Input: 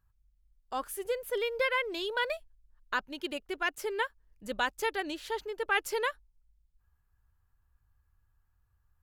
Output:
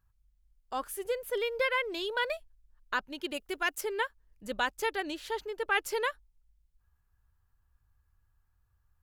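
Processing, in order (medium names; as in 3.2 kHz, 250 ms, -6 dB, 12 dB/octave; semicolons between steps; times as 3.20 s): 3.34–3.81 s: treble shelf 5.8 kHz +9 dB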